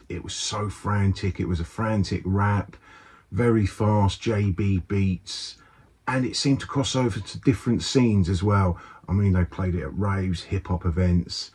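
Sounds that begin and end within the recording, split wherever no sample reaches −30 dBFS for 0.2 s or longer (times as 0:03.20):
0:03.33–0:05.51
0:06.08–0:08.74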